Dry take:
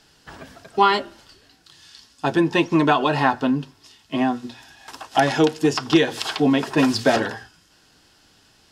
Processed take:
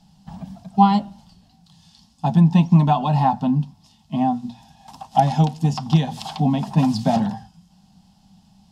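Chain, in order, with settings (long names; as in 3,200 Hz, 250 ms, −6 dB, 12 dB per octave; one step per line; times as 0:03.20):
drawn EQ curve 130 Hz 0 dB, 190 Hz +15 dB, 330 Hz −21 dB, 480 Hz −20 dB, 790 Hz 0 dB, 1,500 Hz −23 dB, 3,500 Hz −12 dB
level +5 dB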